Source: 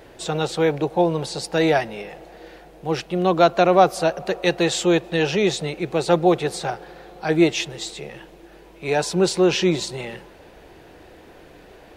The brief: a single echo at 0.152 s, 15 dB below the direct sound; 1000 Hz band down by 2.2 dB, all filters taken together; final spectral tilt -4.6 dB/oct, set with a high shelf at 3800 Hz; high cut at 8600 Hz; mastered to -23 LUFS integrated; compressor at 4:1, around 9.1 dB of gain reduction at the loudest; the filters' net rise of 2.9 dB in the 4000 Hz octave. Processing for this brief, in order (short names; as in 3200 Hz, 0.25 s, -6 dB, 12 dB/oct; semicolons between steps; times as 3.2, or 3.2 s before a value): LPF 8600 Hz; bell 1000 Hz -3.5 dB; high shelf 3800 Hz -5.5 dB; bell 4000 Hz +7 dB; compressor 4:1, threshold -22 dBFS; echo 0.152 s -15 dB; gain +4 dB